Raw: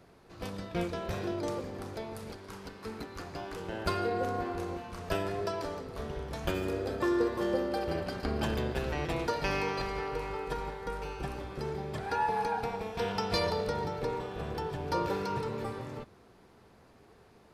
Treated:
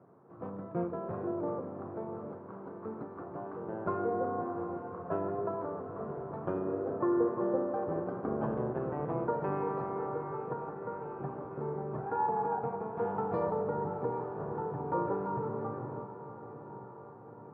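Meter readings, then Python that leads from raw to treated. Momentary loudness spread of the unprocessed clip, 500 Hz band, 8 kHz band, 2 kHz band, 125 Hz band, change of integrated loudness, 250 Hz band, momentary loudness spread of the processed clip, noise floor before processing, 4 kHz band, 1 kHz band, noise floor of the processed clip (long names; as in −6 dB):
11 LU, 0.0 dB, below −30 dB, −11.5 dB, −2.5 dB, −1.0 dB, 0.0 dB, 12 LU, −59 dBFS, below −35 dB, −0.5 dB, −49 dBFS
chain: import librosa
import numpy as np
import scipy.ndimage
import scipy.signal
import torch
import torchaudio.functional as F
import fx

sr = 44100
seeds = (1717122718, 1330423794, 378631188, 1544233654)

y = scipy.signal.sosfilt(scipy.signal.cheby1(3, 1.0, [120.0, 1200.0], 'bandpass', fs=sr, output='sos'), x)
y = fx.echo_diffused(y, sr, ms=784, feedback_pct=65, wet_db=-12)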